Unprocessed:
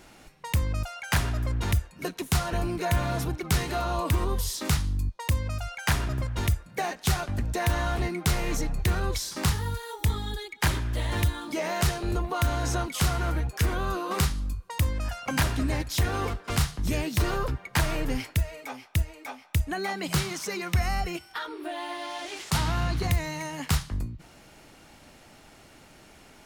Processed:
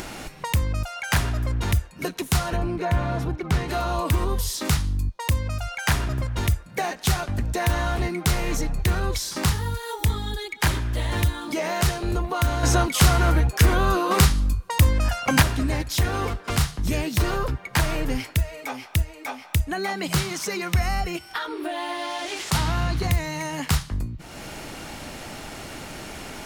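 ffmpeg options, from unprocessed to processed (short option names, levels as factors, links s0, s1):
-filter_complex "[0:a]asplit=3[s0][s1][s2];[s0]afade=t=out:st=2.55:d=0.02[s3];[s1]lowpass=f=1900:p=1,afade=t=in:st=2.55:d=0.02,afade=t=out:st=3.68:d=0.02[s4];[s2]afade=t=in:st=3.68:d=0.02[s5];[s3][s4][s5]amix=inputs=3:normalize=0,asettb=1/sr,asplit=3[s6][s7][s8];[s6]atrim=end=12.634[s9];[s7]atrim=start=12.63:end=15.42,asetpts=PTS-STARTPTS,afade=t=in:d=0.004:c=qsin,afade=t=out:st=2.786:d=0.004:c=qsin,acontrast=39[s10];[s8]atrim=start=15.416[s11];[s9][s10]acrossfade=d=0.004:c1=hsin:c2=qsin[s12];[s12][s11]acrossfade=d=0.004:c1=qsin:c2=hsin,acompressor=mode=upward:threshold=0.0447:ratio=2.5,volume=1.41"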